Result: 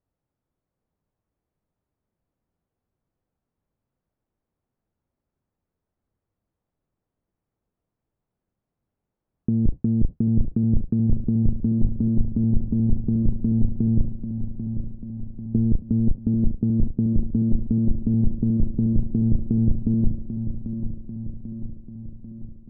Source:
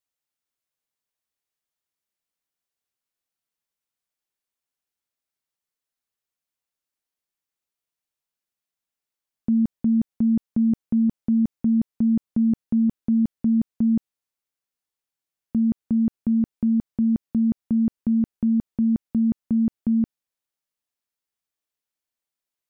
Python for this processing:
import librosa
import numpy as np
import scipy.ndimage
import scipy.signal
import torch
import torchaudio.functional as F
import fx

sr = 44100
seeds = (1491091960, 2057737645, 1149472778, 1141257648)

p1 = fx.octave_divider(x, sr, octaves=1, level_db=-4.0)
p2 = fx.level_steps(p1, sr, step_db=24)
p3 = p1 + (p2 * librosa.db_to_amplitude(-1.5))
p4 = (np.kron(scipy.signal.resample_poly(p3, 1, 3), np.eye(3)[0]) * 3)[:len(p3)]
p5 = fx.over_compress(p4, sr, threshold_db=-21.0, ratio=-1.0)
p6 = scipy.signal.sosfilt(scipy.signal.bessel(2, 650.0, 'lowpass', norm='mag', fs=sr, output='sos'), p5)
p7 = fx.low_shelf(p6, sr, hz=270.0, db=10.5)
p8 = p7 + fx.echo_feedback(p7, sr, ms=792, feedback_pct=59, wet_db=-9.0, dry=0)
y = fx.doppler_dist(p8, sr, depth_ms=0.26)